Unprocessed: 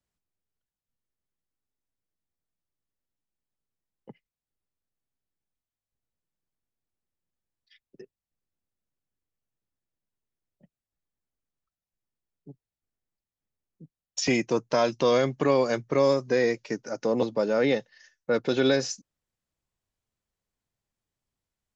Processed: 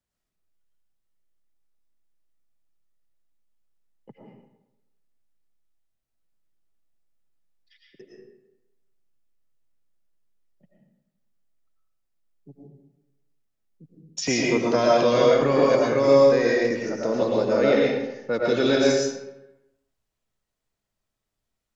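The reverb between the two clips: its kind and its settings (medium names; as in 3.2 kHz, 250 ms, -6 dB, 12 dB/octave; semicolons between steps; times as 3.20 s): algorithmic reverb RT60 0.95 s, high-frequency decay 0.7×, pre-delay 70 ms, DRR -4 dB; trim -1 dB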